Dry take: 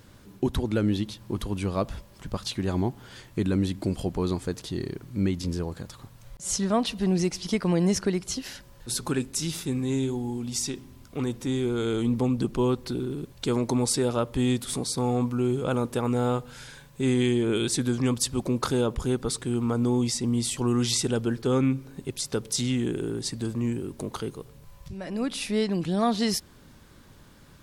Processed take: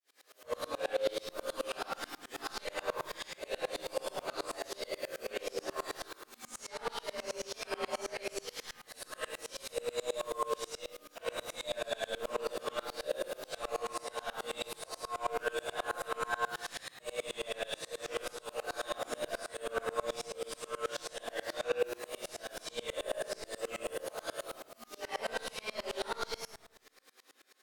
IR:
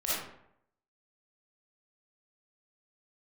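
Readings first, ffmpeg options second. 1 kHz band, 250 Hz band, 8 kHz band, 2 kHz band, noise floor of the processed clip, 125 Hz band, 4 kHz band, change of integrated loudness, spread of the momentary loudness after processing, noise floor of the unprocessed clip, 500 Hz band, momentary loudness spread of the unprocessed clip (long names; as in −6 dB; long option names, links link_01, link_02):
−4.0 dB, −26.0 dB, −13.0 dB, −1.0 dB, −63 dBFS, −31.5 dB, −7.5 dB, −11.5 dB, 7 LU, −52 dBFS, −7.5 dB, 10 LU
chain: -filter_complex "[0:a]agate=range=-33dB:threshold=-39dB:ratio=3:detection=peak,afreqshift=220,aderivative,acompressor=threshold=-46dB:ratio=6,flanger=delay=17.5:depth=3.7:speed=0.87,acrossover=split=170[link_01][link_02];[link_02]acompressor=threshold=-51dB:ratio=6[link_03];[link_01][link_03]amix=inputs=2:normalize=0,asplit=2[link_04][link_05];[link_05]highpass=frequency=720:poles=1,volume=34dB,asoftclip=type=tanh:threshold=-31.5dB[link_06];[link_04][link_06]amix=inputs=2:normalize=0,lowpass=frequency=1800:poles=1,volume=-6dB,aecho=1:1:13|58:0.668|0.562[link_07];[1:a]atrim=start_sample=2205,asetrate=36162,aresample=44100[link_08];[link_07][link_08]afir=irnorm=-1:irlink=0,aeval=exprs='val(0)*pow(10,-28*if(lt(mod(-9.3*n/s,1),2*abs(-9.3)/1000),1-mod(-9.3*n/s,1)/(2*abs(-9.3)/1000),(mod(-9.3*n/s,1)-2*abs(-9.3)/1000)/(1-2*abs(-9.3)/1000))/20)':channel_layout=same,volume=1dB"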